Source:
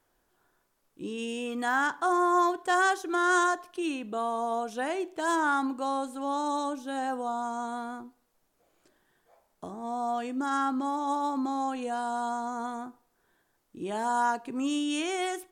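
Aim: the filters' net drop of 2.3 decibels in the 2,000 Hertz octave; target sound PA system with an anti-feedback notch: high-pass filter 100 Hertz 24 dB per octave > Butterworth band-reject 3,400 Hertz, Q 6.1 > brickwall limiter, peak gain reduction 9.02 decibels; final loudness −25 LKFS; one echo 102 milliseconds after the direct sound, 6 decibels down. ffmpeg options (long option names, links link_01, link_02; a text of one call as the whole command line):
ffmpeg -i in.wav -af "highpass=frequency=100:width=0.5412,highpass=frequency=100:width=1.3066,asuperstop=centerf=3400:order=8:qfactor=6.1,equalizer=frequency=2000:width_type=o:gain=-3.5,aecho=1:1:102:0.501,volume=7dB,alimiter=limit=-16dB:level=0:latency=1" out.wav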